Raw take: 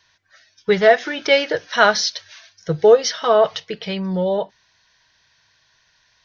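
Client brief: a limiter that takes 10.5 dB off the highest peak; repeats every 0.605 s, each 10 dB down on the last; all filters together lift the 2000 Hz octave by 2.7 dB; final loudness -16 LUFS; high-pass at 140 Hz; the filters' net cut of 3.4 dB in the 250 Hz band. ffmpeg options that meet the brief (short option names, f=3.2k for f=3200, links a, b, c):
-af "highpass=140,equalizer=f=250:t=o:g=-4,equalizer=f=2k:t=o:g=3.5,alimiter=limit=-10dB:level=0:latency=1,aecho=1:1:605|1210|1815|2420:0.316|0.101|0.0324|0.0104,volume=6dB"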